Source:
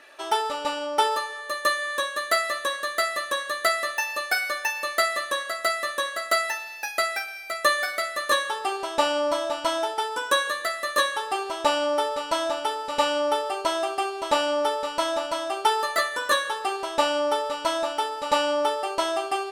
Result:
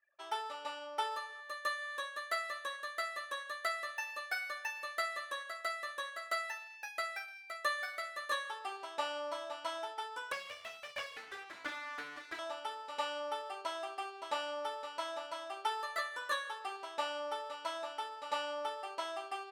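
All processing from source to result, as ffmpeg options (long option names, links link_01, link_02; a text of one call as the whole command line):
ffmpeg -i in.wav -filter_complex "[0:a]asettb=1/sr,asplit=3[link_01][link_02][link_03];[link_01]atrim=end=10.324[link_04];[link_02]atrim=start=10.32:end=12.39,asetpts=PTS-STARTPTS,afade=type=in:duration=0.004:curve=qsin,afade=type=out:start_time=2.066:duration=0.004:curve=qsin,acrossover=split=2800[link_05][link_06];[link_06]acompressor=threshold=-42dB:ratio=4:attack=1:release=60[link_07];[link_05][link_07]amix=inputs=2:normalize=0,aeval=exprs='abs(val(0))':channel_layout=same[link_08];[link_03]atrim=start=12.386[link_09];[link_04][link_08]acrossfade=duration=0.004:curve1=hsin:curve2=qsin[link_10];[link_10][link_09]acrossfade=duration=0.004:curve1=qsin:curve2=hsin,anlmdn=0.158,highpass=frequency=1400:poles=1,highshelf=frequency=3600:gain=-11.5,volume=-8dB" out.wav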